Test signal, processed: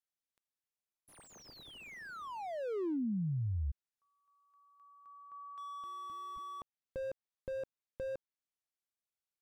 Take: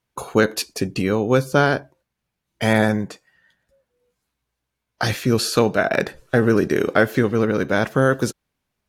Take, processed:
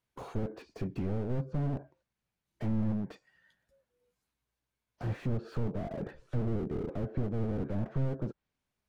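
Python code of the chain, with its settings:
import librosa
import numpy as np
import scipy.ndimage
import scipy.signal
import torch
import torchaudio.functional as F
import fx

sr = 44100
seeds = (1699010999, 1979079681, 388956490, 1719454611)

y = fx.env_lowpass_down(x, sr, base_hz=570.0, full_db=-15.0)
y = fx.slew_limit(y, sr, full_power_hz=18.0)
y = y * 10.0 ** (-8.0 / 20.0)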